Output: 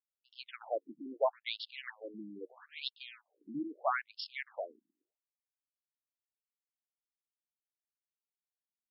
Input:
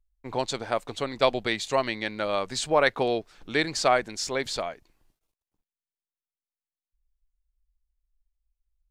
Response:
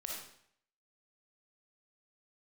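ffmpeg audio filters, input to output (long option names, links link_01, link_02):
-af "adynamicsmooth=sensitivity=8:basefreq=640,afftfilt=real='re*between(b*sr/1024,240*pow(3900/240,0.5+0.5*sin(2*PI*0.77*pts/sr))/1.41,240*pow(3900/240,0.5+0.5*sin(2*PI*0.77*pts/sr))*1.41)':imag='im*between(b*sr/1024,240*pow(3900/240,0.5+0.5*sin(2*PI*0.77*pts/sr))/1.41,240*pow(3900/240,0.5+0.5*sin(2*PI*0.77*pts/sr))*1.41)':win_size=1024:overlap=0.75,volume=-6dB"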